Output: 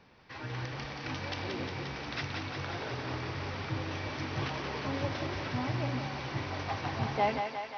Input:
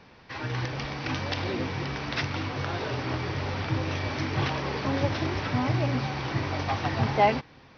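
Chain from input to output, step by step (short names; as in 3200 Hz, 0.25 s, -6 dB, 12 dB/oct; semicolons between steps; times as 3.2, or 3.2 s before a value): on a send: thinning echo 0.178 s, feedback 73%, high-pass 430 Hz, level -5 dB; on the sum: gain -7.5 dB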